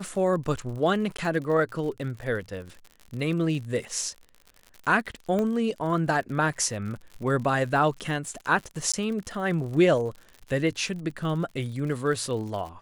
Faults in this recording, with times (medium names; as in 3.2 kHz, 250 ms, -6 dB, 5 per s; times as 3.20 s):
crackle 68 per s -35 dBFS
1.17–1.18 s: dropout 14 ms
5.39 s: pop -17 dBFS
8.92–8.94 s: dropout 16 ms